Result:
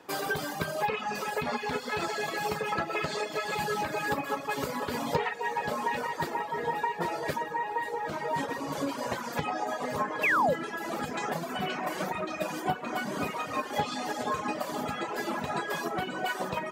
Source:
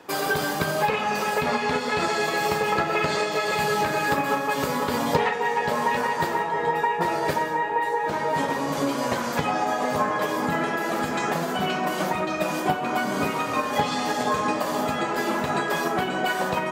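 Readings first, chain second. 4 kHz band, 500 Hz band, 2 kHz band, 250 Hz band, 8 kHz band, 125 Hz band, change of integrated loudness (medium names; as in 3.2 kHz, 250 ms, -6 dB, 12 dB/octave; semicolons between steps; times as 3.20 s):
-7.5 dB, -7.5 dB, -6.5 dB, -8.0 dB, -7.5 dB, -7.0 dB, -7.0 dB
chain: painted sound fall, 10.23–10.54 s, 460–2800 Hz -19 dBFS; echo that smears into a reverb 1637 ms, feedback 46%, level -12.5 dB; reverb removal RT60 1.1 s; trim -5.5 dB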